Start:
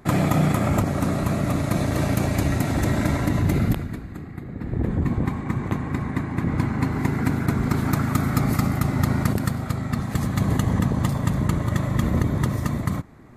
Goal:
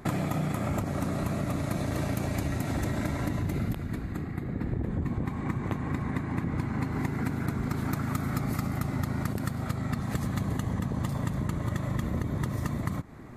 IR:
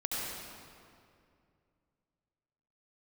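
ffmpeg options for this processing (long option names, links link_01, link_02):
-af "acompressor=threshold=-29dB:ratio=6,volume=2dB"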